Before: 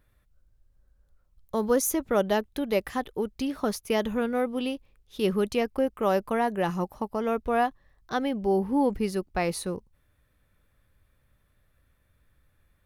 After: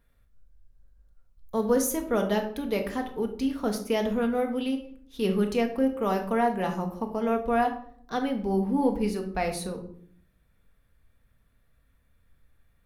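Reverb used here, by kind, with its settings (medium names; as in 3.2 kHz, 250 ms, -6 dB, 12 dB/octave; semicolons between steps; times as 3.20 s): simulated room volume 820 m³, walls furnished, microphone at 1.7 m; trim -3 dB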